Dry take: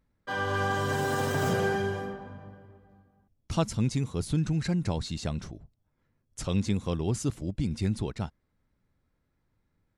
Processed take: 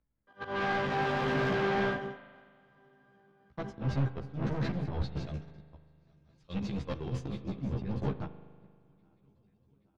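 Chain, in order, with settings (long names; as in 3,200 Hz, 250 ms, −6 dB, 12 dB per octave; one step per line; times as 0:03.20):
feedback delay that plays each chunk backwards 413 ms, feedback 74%, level −8.5 dB
noise gate −28 dBFS, range −48 dB
0:05.26–0:07.53: high-shelf EQ 3,100 Hz +8.5 dB
upward compression, threshold −46 dBFS
volume swells 179 ms
soft clipping −39 dBFS, distortion −4 dB
high-frequency loss of the air 260 metres
double-tracking delay 15 ms −2 dB
spring reverb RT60 3.1 s, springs 39 ms, chirp 55 ms, DRR 11 dB
multiband upward and downward expander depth 40%
level +8 dB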